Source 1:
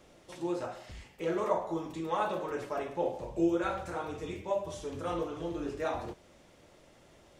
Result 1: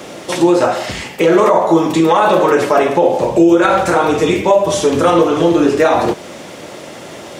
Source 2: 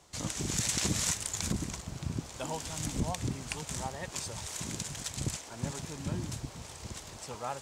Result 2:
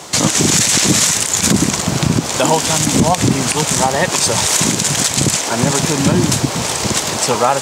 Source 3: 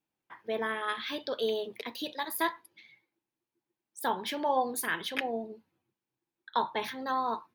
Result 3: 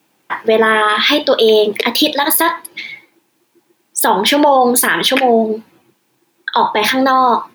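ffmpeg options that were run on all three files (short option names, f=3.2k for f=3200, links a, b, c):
-filter_complex "[0:a]highpass=160,asplit=2[a][b];[b]acompressor=threshold=-40dB:ratio=6,volume=2dB[c];[a][c]amix=inputs=2:normalize=0,alimiter=level_in=22.5dB:limit=-1dB:release=50:level=0:latency=1,volume=-1dB"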